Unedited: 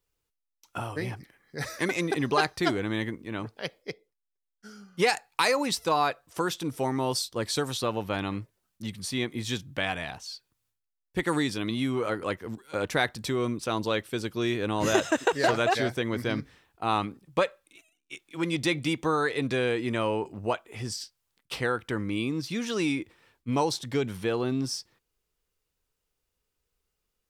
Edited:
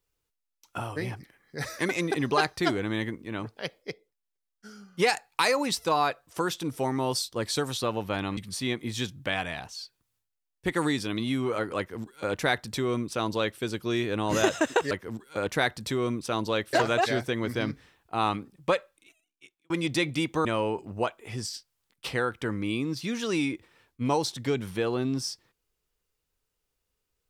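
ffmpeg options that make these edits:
ffmpeg -i in.wav -filter_complex "[0:a]asplit=6[link_01][link_02][link_03][link_04][link_05][link_06];[link_01]atrim=end=8.372[link_07];[link_02]atrim=start=8.878:end=15.422[link_08];[link_03]atrim=start=12.288:end=14.112[link_09];[link_04]atrim=start=15.418:end=18.39,asetpts=PTS-STARTPTS,afade=type=out:start_time=2.042:duration=0.93[link_10];[link_05]atrim=start=18.39:end=19.142,asetpts=PTS-STARTPTS,afade=type=in:duration=0.004:curve=hsin[link_11];[link_06]atrim=start=19.918[link_12];[link_07][link_08]acrossfade=duration=0.004:curve1=hsin:curve2=hsin[link_13];[link_13][link_09]acrossfade=duration=0.004:curve1=hsin:curve2=hsin[link_14];[link_10][link_11]concat=n=2:v=0:a=1[link_15];[link_14][link_15]acrossfade=duration=0.004:curve1=hsin:curve2=hsin[link_16];[link_16][link_12]acrossfade=duration=0.004:curve1=hsin:curve2=hsin" out.wav

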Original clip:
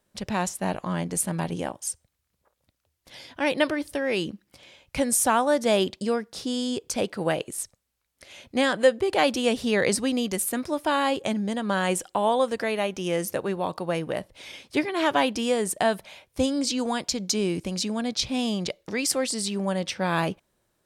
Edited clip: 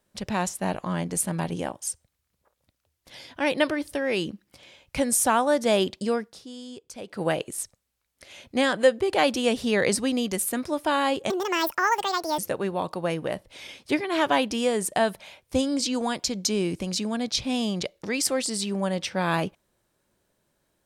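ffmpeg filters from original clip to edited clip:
ffmpeg -i in.wav -filter_complex "[0:a]asplit=5[link_01][link_02][link_03][link_04][link_05];[link_01]atrim=end=6.39,asetpts=PTS-STARTPTS,afade=type=out:start_time=6.24:duration=0.15:silence=0.237137[link_06];[link_02]atrim=start=6.39:end=7.06,asetpts=PTS-STARTPTS,volume=-12.5dB[link_07];[link_03]atrim=start=7.06:end=11.304,asetpts=PTS-STARTPTS,afade=type=in:duration=0.15:silence=0.237137[link_08];[link_04]atrim=start=11.3:end=13.23,asetpts=PTS-STARTPTS,asetrate=78498,aresample=44100,atrim=end_sample=47816,asetpts=PTS-STARTPTS[link_09];[link_05]atrim=start=13.226[link_10];[link_06][link_07][link_08]concat=n=3:v=0:a=1[link_11];[link_11][link_09]acrossfade=duration=0.004:curve1=hsin:curve2=hsin[link_12];[link_12][link_10]acrossfade=duration=0.004:curve1=hsin:curve2=hsin" out.wav

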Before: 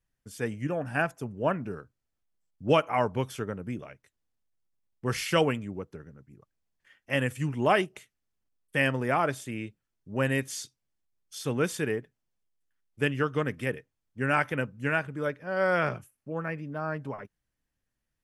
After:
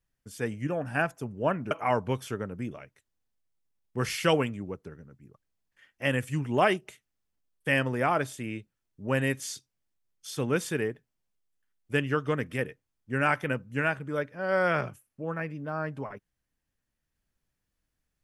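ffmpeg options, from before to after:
ffmpeg -i in.wav -filter_complex "[0:a]asplit=2[link_01][link_02];[link_01]atrim=end=1.712[link_03];[link_02]atrim=start=2.788[link_04];[link_03][link_04]acrossfade=duration=0.004:curve1=hsin:curve2=hsin" out.wav

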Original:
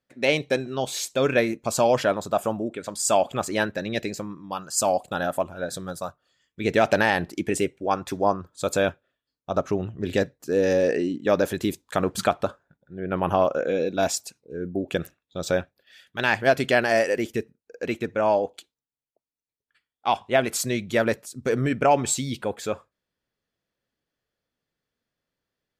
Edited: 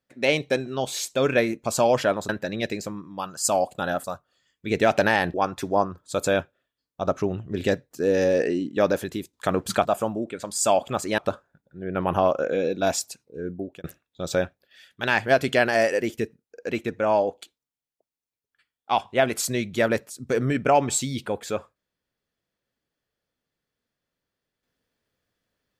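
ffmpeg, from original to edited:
ffmpeg -i in.wav -filter_complex "[0:a]asplit=8[link_01][link_02][link_03][link_04][link_05][link_06][link_07][link_08];[link_01]atrim=end=2.292[link_09];[link_02]atrim=start=3.618:end=5.372[link_10];[link_03]atrim=start=5.978:end=7.282[link_11];[link_04]atrim=start=7.828:end=11.82,asetpts=PTS-STARTPTS,afade=type=out:start_time=3.522:duration=0.47:silence=0.281838[link_12];[link_05]atrim=start=11.82:end=12.342,asetpts=PTS-STARTPTS,afade=type=in:duration=0.004:curve=hsin:silence=0.281838[link_13];[link_06]atrim=start=2.288:end=3.622[link_14];[link_07]atrim=start=12.338:end=15,asetpts=PTS-STARTPTS,afade=type=out:start_time=2.272:duration=0.39[link_15];[link_08]atrim=start=15,asetpts=PTS-STARTPTS,afade=type=in:duration=0.004:curve=hsin[link_16];[link_09][link_10]acrossfade=duration=0.004:curve1=hsin:curve2=hsin[link_17];[link_17][link_11]acrossfade=duration=0.004:curve1=hsin:curve2=hsin[link_18];[link_12][link_13]concat=n=2:v=0:a=1[link_19];[link_18][link_19]acrossfade=duration=0.004:curve1=hsin:curve2=hsin[link_20];[link_20][link_14]acrossfade=duration=0.004:curve1=hsin:curve2=hsin[link_21];[link_15][link_16]concat=n=2:v=0:a=1[link_22];[link_21][link_22]acrossfade=duration=0.004:curve1=hsin:curve2=hsin" out.wav

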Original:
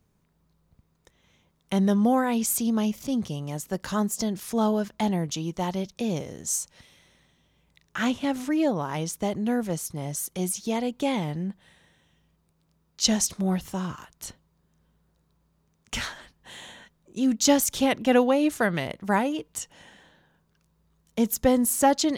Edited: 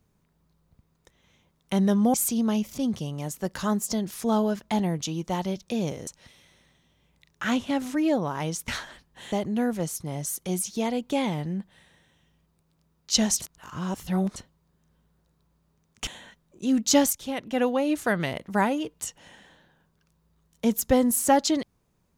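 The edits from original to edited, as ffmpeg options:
ffmpeg -i in.wav -filter_complex "[0:a]asplit=9[link_01][link_02][link_03][link_04][link_05][link_06][link_07][link_08][link_09];[link_01]atrim=end=2.142[link_10];[link_02]atrim=start=2.428:end=6.362[link_11];[link_03]atrim=start=6.608:end=9.222[link_12];[link_04]atrim=start=15.968:end=16.612[link_13];[link_05]atrim=start=9.218:end=13.322[link_14];[link_06]atrim=start=13.318:end=14.262,asetpts=PTS-STARTPTS,areverse[link_15];[link_07]atrim=start=14.258:end=15.972[link_16];[link_08]atrim=start=16.608:end=17.67,asetpts=PTS-STARTPTS,afade=type=out:start_time=1.058:duration=0.004:curve=hsin:silence=0.237137[link_17];[link_09]atrim=start=17.67,asetpts=PTS-STARTPTS,afade=type=in:duration=1.11:silence=0.237137[link_18];[link_10][link_11]acrossfade=duration=0.004:curve1=hsin:curve2=hsin[link_19];[link_19][link_12]acrossfade=duration=0.004:curve1=hsin:curve2=hsin[link_20];[link_20][link_13]acrossfade=duration=0.004:curve1=hsin:curve2=hsin[link_21];[link_21][link_14]acrossfade=duration=0.004:curve1=hsin:curve2=hsin[link_22];[link_22][link_15]acrossfade=duration=0.004:curve1=hsin:curve2=hsin[link_23];[link_23][link_16]acrossfade=duration=0.004:curve1=hsin:curve2=hsin[link_24];[link_17][link_18]concat=n=2:v=0:a=1[link_25];[link_24][link_25]acrossfade=duration=0.004:curve1=hsin:curve2=hsin" out.wav

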